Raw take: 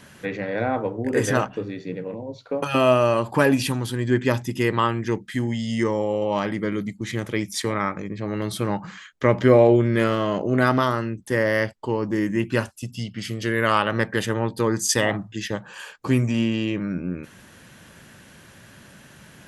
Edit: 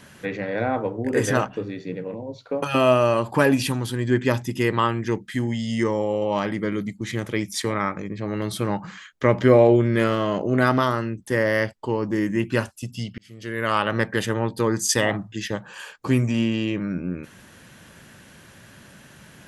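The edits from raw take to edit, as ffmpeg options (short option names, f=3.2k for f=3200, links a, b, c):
-filter_complex "[0:a]asplit=2[a][b];[a]atrim=end=13.18,asetpts=PTS-STARTPTS,afade=t=out:st=13.176:d=0.004:c=hsin[c];[b]atrim=start=13.18,asetpts=PTS-STARTPTS,afade=t=in:d=0.72[d];[c][d]concat=n=2:v=0:a=1"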